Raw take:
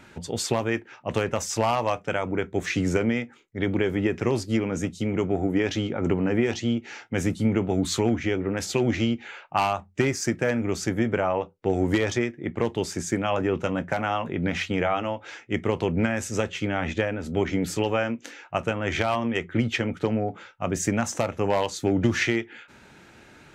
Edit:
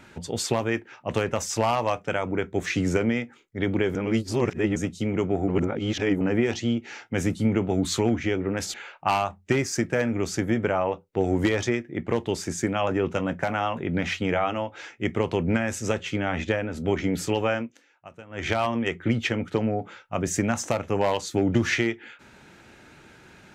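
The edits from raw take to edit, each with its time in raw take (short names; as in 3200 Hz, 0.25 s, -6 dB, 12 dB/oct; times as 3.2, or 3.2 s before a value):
3.95–4.76 reverse
5.48–6.21 reverse
8.74–9.23 cut
18.05–19 dip -18 dB, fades 0.22 s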